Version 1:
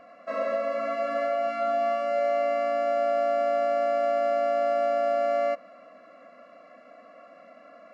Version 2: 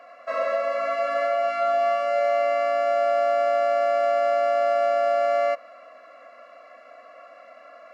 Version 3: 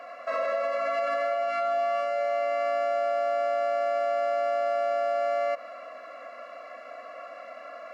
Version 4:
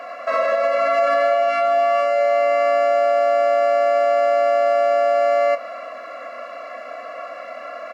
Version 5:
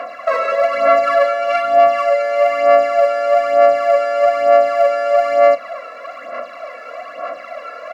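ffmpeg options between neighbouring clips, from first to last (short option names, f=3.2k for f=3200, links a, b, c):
-af "highpass=580,volume=5.5dB"
-af "alimiter=level_in=1dB:limit=-24dB:level=0:latency=1:release=69,volume=-1dB,volume=4.5dB"
-filter_complex "[0:a]asplit=2[a][b];[b]adelay=28,volume=-11dB[c];[a][c]amix=inputs=2:normalize=0,volume=9dB"
-af "aphaser=in_gain=1:out_gain=1:delay=2.3:decay=0.59:speed=1.1:type=sinusoidal,volume=1dB"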